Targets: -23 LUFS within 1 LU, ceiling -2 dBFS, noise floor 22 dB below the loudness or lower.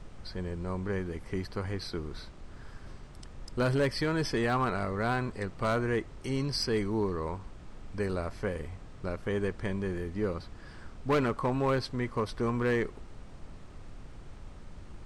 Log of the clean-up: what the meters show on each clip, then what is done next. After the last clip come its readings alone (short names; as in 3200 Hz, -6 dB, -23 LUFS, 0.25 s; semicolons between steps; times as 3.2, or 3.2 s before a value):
clipped 0.7%; flat tops at -21.5 dBFS; noise floor -48 dBFS; noise floor target -54 dBFS; loudness -32.0 LUFS; peak -21.5 dBFS; loudness target -23.0 LUFS
-> clip repair -21.5 dBFS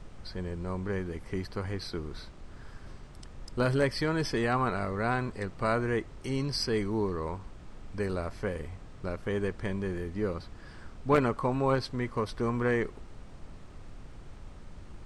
clipped 0.0%; noise floor -48 dBFS; noise floor target -54 dBFS
-> noise print and reduce 6 dB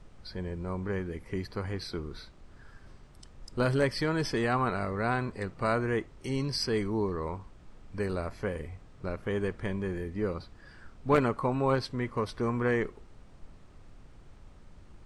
noise floor -54 dBFS; loudness -31.5 LUFS; peak -12.5 dBFS; loudness target -23.0 LUFS
-> gain +8.5 dB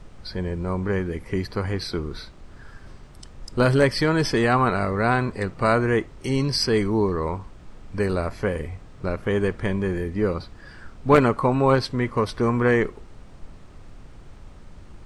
loudness -23.0 LUFS; peak -4.0 dBFS; noise floor -45 dBFS